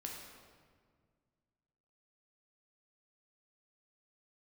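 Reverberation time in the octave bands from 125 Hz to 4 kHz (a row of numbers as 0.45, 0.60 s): 2.6, 2.4, 1.9, 1.7, 1.4, 1.2 s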